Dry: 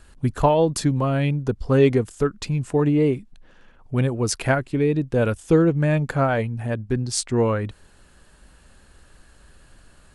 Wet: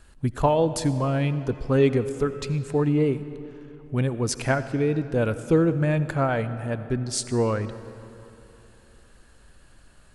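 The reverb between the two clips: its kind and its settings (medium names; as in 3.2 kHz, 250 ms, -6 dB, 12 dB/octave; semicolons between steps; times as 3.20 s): algorithmic reverb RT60 3.1 s, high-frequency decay 0.7×, pre-delay 40 ms, DRR 12.5 dB; trim -3 dB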